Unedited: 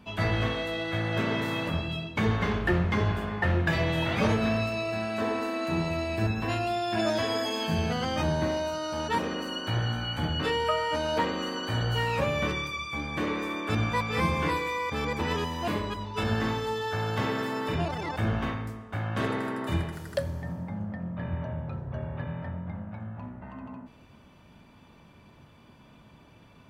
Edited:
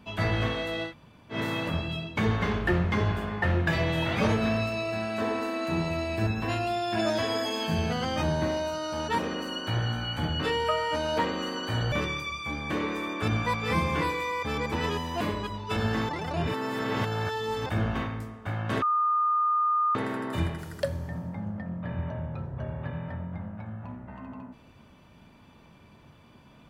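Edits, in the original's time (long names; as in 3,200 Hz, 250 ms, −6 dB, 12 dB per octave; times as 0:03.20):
0:00.89–0:01.34: fill with room tone, crossfade 0.10 s
0:11.92–0:12.39: remove
0:16.56–0:18.13: reverse
0:19.29: insert tone 1,220 Hz −21.5 dBFS 1.13 s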